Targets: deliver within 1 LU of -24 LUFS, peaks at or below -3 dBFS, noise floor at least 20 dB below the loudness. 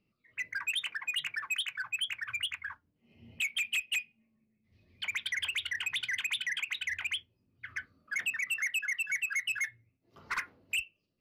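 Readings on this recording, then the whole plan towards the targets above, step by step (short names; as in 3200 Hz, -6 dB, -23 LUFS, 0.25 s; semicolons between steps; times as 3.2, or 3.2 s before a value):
loudness -33.5 LUFS; peak -26.5 dBFS; loudness target -24.0 LUFS
-> gain +9.5 dB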